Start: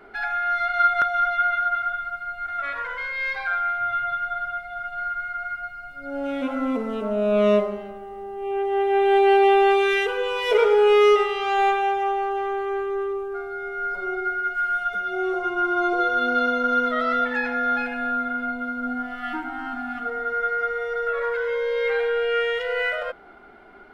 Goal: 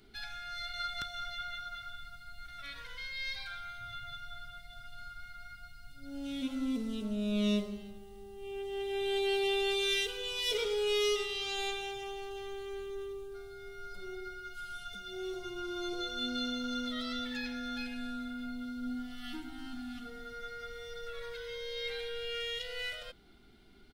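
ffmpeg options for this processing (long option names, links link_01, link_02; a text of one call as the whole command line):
ffmpeg -i in.wav -af "firequalizer=gain_entry='entry(100,0);entry(570,-23);entry(1300,-22);entry(3700,4)':delay=0.05:min_phase=1" out.wav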